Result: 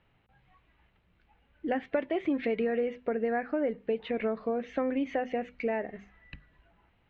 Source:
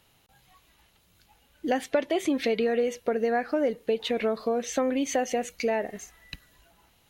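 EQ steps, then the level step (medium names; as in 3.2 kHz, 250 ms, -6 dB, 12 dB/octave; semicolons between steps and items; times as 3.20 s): four-pole ladder low-pass 2.8 kHz, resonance 30%; bass shelf 320 Hz +7.5 dB; hum notches 50/100/150/200/250 Hz; 0.0 dB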